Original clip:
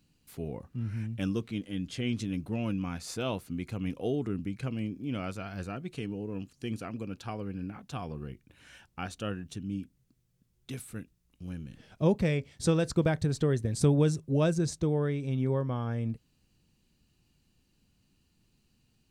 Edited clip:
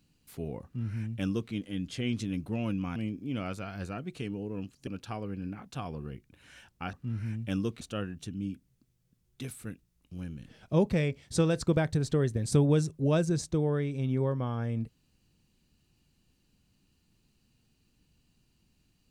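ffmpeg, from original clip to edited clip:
-filter_complex "[0:a]asplit=5[s0][s1][s2][s3][s4];[s0]atrim=end=2.962[s5];[s1]atrim=start=4.738:end=6.652[s6];[s2]atrim=start=7.038:end=9.102[s7];[s3]atrim=start=0.638:end=1.522[s8];[s4]atrim=start=9.098[s9];[s5][s6]acrossfade=d=0.004:c1=hsin:c2=hsin[s10];[s10][s7]acrossfade=d=0.004:c1=hsin:c2=hsin[s11];[s11][s8]acrossfade=d=0.004:c1=hsin:c2=hsin[s12];[s12][s9]acrossfade=d=0.004:c1=hsin:c2=hsin"

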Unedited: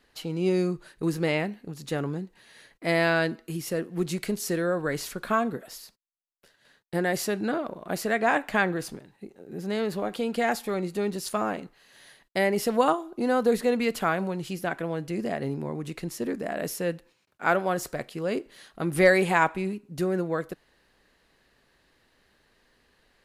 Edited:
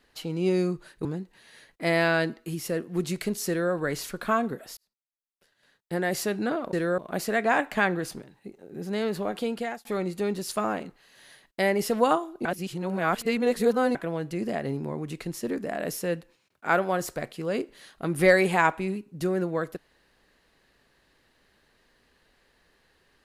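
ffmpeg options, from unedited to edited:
-filter_complex "[0:a]asplit=8[s0][s1][s2][s3][s4][s5][s6][s7];[s0]atrim=end=1.052[s8];[s1]atrim=start=2.068:end=5.79,asetpts=PTS-STARTPTS,afade=t=out:st=3.718:d=0.004:c=hsin[s9];[s2]atrim=start=5.79:end=7.752,asetpts=PTS-STARTPTS,afade=t=in:d=1.46[s10];[s3]atrim=start=4.498:end=4.752[s11];[s4]atrim=start=7.748:end=10.62,asetpts=PTS-STARTPTS,afade=t=out:st=2.482:d=0.39[s12];[s5]atrim=start=10.62:end=13.222,asetpts=PTS-STARTPTS,afade=t=in:d=0.004:c=hsin[s13];[s6]atrim=start=13.218:end=14.722,asetpts=PTS-STARTPTS,areverse[s14];[s7]atrim=start=14.718[s15];[s9][s10]concat=n=2:v=0:a=1[s16];[s8][s16]acrossfade=d=0.004:c1=hsin:c2=hsin[s17];[s17][s11]acrossfade=d=0.004:c1=hsin:c2=hsin[s18];[s12][s13]concat=n=2:v=0:a=1[s19];[s18][s19]acrossfade=d=0.004:c1=hsin:c2=hsin[s20];[s20][s14]acrossfade=d=0.004:c1=hsin:c2=hsin[s21];[s21][s15]acrossfade=d=0.004:c1=hsin:c2=hsin"

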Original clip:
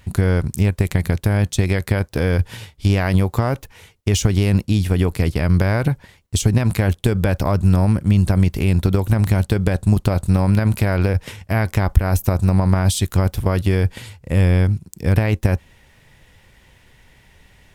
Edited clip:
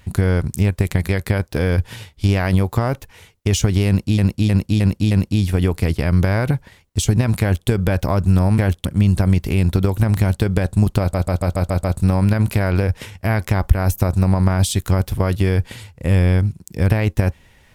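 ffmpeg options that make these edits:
-filter_complex "[0:a]asplit=14[s0][s1][s2][s3][s4][s5][s6][s7][s8][s9][s10][s11][s12][s13];[s0]atrim=end=1.092[s14];[s1]atrim=start=1.698:end=4.792[s15];[s2]atrim=start=4.478:end=4.792[s16];[s3]atrim=start=4.478:end=4.792[s17];[s4]atrim=start=4.478:end=4.792[s18];[s5]atrim=start=4.478:end=7.952[s19];[s6]atrim=start=6.778:end=7.052[s20];[s7]atrim=start=7.948:end=10.242[s21];[s8]atrim=start=10.098:end=10.242[s22];[s9]atrim=start=10.098:end=10.242[s23];[s10]atrim=start=10.098:end=10.242[s24];[s11]atrim=start=10.098:end=10.242[s25];[s12]atrim=start=10.098:end=10.242[s26];[s13]atrim=start=10.098[s27];[s14][s15]acrossfade=d=0.004:c1=hsin:c2=hsin[s28];[s28][s16]acrossfade=d=0.004:c1=hsin:c2=hsin[s29];[s29][s17]acrossfade=d=0.004:c1=hsin:c2=hsin[s30];[s30][s18]acrossfade=d=0.004:c1=hsin:c2=hsin[s31];[s31][s19]acrossfade=d=0.004:c1=hsin:c2=hsin[s32];[s32][s20]acrossfade=d=0.004:c1=hsin:c2=hsin[s33];[s33][s21]acrossfade=d=0.004:c1=hsin:c2=hsin[s34];[s34][s22]acrossfade=d=0.004:c1=hsin:c2=hsin[s35];[s35][s23]acrossfade=d=0.004:c1=hsin:c2=hsin[s36];[s36][s24]acrossfade=d=0.004:c1=hsin:c2=hsin[s37];[s37][s25]acrossfade=d=0.004:c1=hsin:c2=hsin[s38];[s38][s26]acrossfade=d=0.004:c1=hsin:c2=hsin[s39];[s39][s27]acrossfade=d=0.004:c1=hsin:c2=hsin"

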